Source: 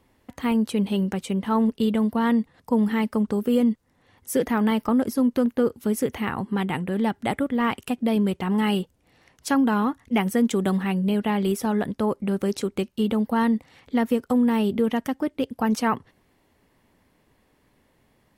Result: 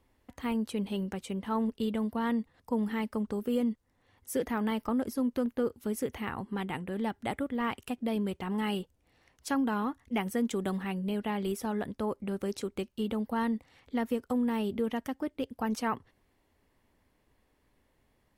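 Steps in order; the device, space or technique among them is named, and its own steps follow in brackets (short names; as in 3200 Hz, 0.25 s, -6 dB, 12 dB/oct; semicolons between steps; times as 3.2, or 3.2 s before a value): low shelf boost with a cut just above (low shelf 86 Hz +7.5 dB; bell 160 Hz -4.5 dB 1.1 oct); gain -8 dB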